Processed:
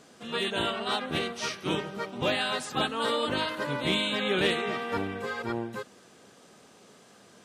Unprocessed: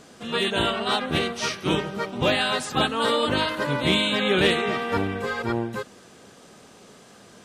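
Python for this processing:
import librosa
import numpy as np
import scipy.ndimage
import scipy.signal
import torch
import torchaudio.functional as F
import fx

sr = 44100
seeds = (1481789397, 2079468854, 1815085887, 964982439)

y = fx.highpass(x, sr, hz=120.0, slope=6)
y = F.gain(torch.from_numpy(y), -5.5).numpy()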